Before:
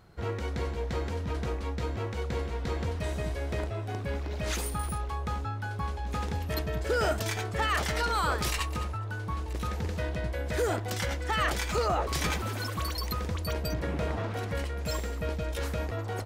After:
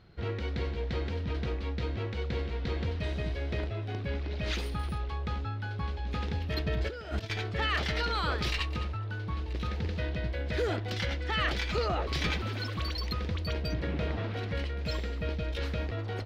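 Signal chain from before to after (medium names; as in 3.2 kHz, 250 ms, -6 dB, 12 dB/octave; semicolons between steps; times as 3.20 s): FFT filter 360 Hz 0 dB, 1 kHz -5 dB, 4.2 kHz +12 dB; 6.66–7.30 s: compressor with a negative ratio -31 dBFS, ratio -0.5; distance through air 330 m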